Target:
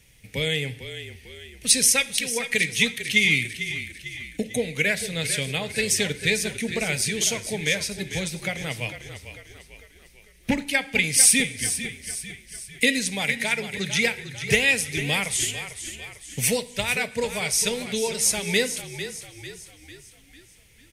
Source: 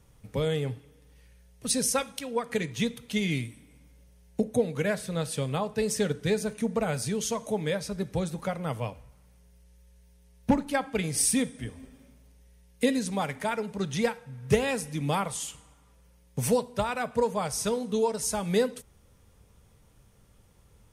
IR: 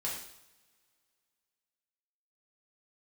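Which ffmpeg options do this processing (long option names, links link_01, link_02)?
-filter_complex "[0:a]highshelf=frequency=1600:width_type=q:width=3:gain=10,asplit=6[link_01][link_02][link_03][link_04][link_05][link_06];[link_02]adelay=448,afreqshift=-34,volume=-11dB[link_07];[link_03]adelay=896,afreqshift=-68,volume=-17.2dB[link_08];[link_04]adelay=1344,afreqshift=-102,volume=-23.4dB[link_09];[link_05]adelay=1792,afreqshift=-136,volume=-29.6dB[link_10];[link_06]adelay=2240,afreqshift=-170,volume=-35.8dB[link_11];[link_01][link_07][link_08][link_09][link_10][link_11]amix=inputs=6:normalize=0,asplit=2[link_12][link_13];[1:a]atrim=start_sample=2205[link_14];[link_13][link_14]afir=irnorm=-1:irlink=0,volume=-20.5dB[link_15];[link_12][link_15]amix=inputs=2:normalize=0,volume=-1dB"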